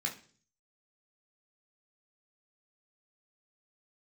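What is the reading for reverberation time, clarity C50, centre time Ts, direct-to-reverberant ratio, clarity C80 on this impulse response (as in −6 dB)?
0.45 s, 11.5 dB, 17 ms, −1.5 dB, 16.5 dB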